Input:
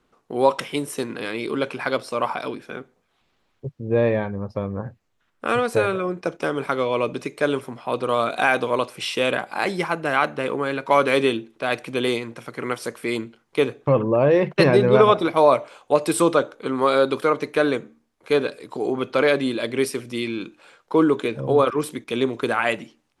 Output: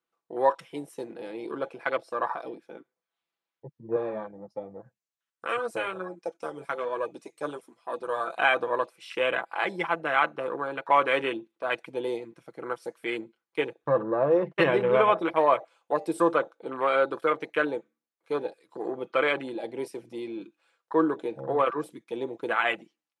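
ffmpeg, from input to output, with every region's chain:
-filter_complex "[0:a]asettb=1/sr,asplit=3[a][b][c];[a]atrim=end=3.964[d];[b]atrim=start=3.96:end=8.36,asetpts=PTS-STARTPTS,afade=t=in:d=0.004:c=qsin,afade=t=out:st=4.396:d=0.004:c=qsin,highpass=f=85:w=0.5412,highpass=f=85:w=1.3066,equalizer=f=8.4k:w=0.58:g=11,flanger=delay=1.6:depth=5.7:regen=42:speed=1.3:shape=triangular[e];[c]atrim=start=8.356[f];[d][e]acrossfade=d=0.004:c1=hsin:c2=qsin[g];[g][f]acrossfade=d=0.004:c1=qsin:c2=hsin,afwtdn=0.0447,highpass=f=650:p=1,aecho=1:1:6:0.46,volume=-2.5dB"

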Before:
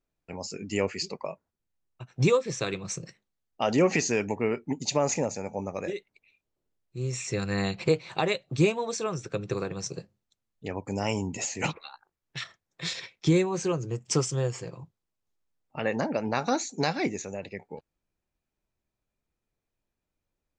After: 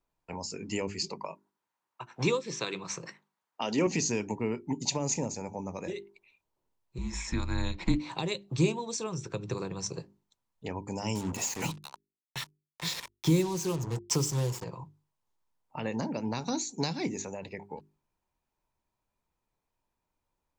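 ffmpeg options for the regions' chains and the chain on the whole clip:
-filter_complex "[0:a]asettb=1/sr,asplit=3[a][b][c];[a]atrim=end=1.244[d];[b]atrim=start=1.24:end=3.87,asetpts=PTS-STARTPTS,afade=t=in:d=0.004:c=qsin,afade=t=out:st=2.626:d=0.004:c=qsin,highpass=210,equalizer=f=1.4k:w=0.64:g=9,acrossover=split=6800[e][f];[f]acompressor=threshold=-56dB:ratio=4:attack=1:release=60[g];[e][g]amix=inputs=2:normalize=0[h];[c]atrim=start=3.866[i];[d][h]acrossfade=d=0.004:c1=hsin:c2=qsin[j];[j][i]acrossfade=d=0.004:c1=qsin:c2=hsin,asettb=1/sr,asplit=3[k][l][m];[k]atrim=end=6.984[n];[l]atrim=start=6.98:end=8,asetpts=PTS-STARTPTS,afade=t=in:d=0.004:c=qsin,afade=t=out:st=1.016:d=0.004:c=qsin,highshelf=f=5.2k:g=-6,afreqshift=-180[o];[m]atrim=start=7.996[p];[n][o]acrossfade=d=0.004:c1=hsin:c2=qsin[q];[q][p]acrossfade=d=0.004:c1=qsin:c2=hsin,asettb=1/sr,asplit=3[r][s][t];[r]atrim=end=11.154[u];[s]atrim=start=11.15:end=14.64,asetpts=PTS-STARTPTS,afade=t=in:d=0.004:c=qsin,afade=t=out:st=3.486:d=0.004:c=qsin,aecho=1:1:95:0.0841,atrim=end_sample=153909,acrusher=bits=5:mix=0:aa=0.5[v];[t]atrim=start=14.636[w];[u][v]acrossfade=d=0.004:c1=hsin:c2=qsin[x];[x][w]acrossfade=d=0.004:c1=qsin:c2=hsin,equalizer=f=950:t=o:w=0.42:g=12.5,bandreject=f=50:t=h:w=6,bandreject=f=100:t=h:w=6,bandreject=f=150:t=h:w=6,bandreject=f=200:t=h:w=6,bandreject=f=250:t=h:w=6,bandreject=f=300:t=h:w=6,bandreject=f=350:t=h:w=6,bandreject=f=400:t=h:w=6,acrossover=split=370|3000[y][z][aa];[z]acompressor=threshold=-40dB:ratio=6[ab];[y][ab][aa]amix=inputs=3:normalize=0"

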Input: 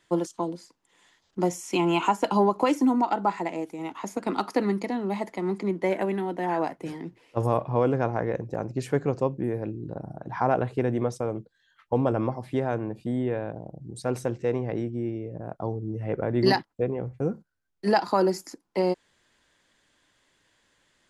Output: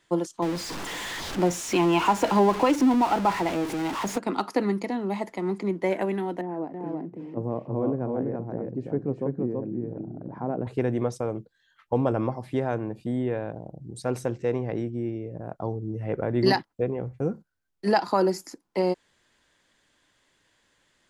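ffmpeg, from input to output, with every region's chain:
-filter_complex "[0:a]asettb=1/sr,asplit=3[a][b][c];[a]atrim=end=0.424[d];[b]atrim=start=0.42:end=4.18,asetpts=PTS-STARTPTS,afade=t=in:d=0.004:c=qsin,afade=t=out:st=3.756:d=0.004:c=qsin,aeval=exprs='val(0)+0.5*0.0473*sgn(val(0))':c=same,highshelf=f=8.5k:g=-11.5[e];[c]atrim=start=4.176[f];[d][e]acrossfade=d=0.004:c1=hsin:c2=qsin[g];[g][f]acrossfade=d=0.004:c1=qsin:c2=hsin,asettb=1/sr,asplit=3[h][i][j];[h]atrim=end=6.414[k];[i]atrim=start=6.41:end=10.67,asetpts=PTS-STARTPTS,afade=t=in:d=0.004:c=qsin,afade=t=out:st=4.256:d=0.004:c=qsin,acompressor=mode=upward:threshold=-28dB:ratio=2.5:attack=3.2:release=140:knee=2.83:detection=peak,bandpass=f=250:t=q:w=1.1,aecho=1:1:330:0.708,atrim=end_sample=187866[l];[j]atrim=start=10.666[m];[k][l]acrossfade=d=0.004:c1=hsin:c2=qsin[n];[n][m]acrossfade=d=0.004:c1=qsin:c2=hsin"

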